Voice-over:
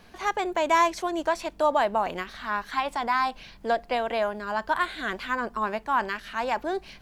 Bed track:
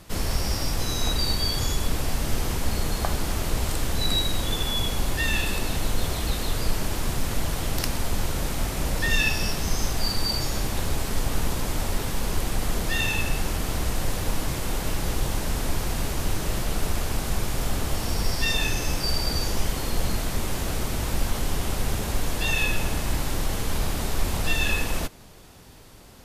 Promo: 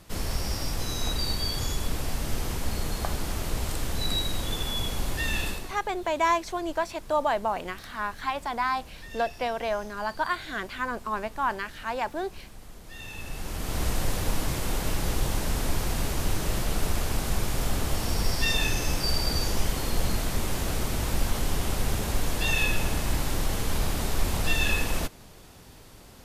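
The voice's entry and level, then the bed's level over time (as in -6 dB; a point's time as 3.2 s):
5.50 s, -2.5 dB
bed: 5.48 s -4 dB
5.83 s -20.5 dB
12.82 s -20.5 dB
13.83 s -1 dB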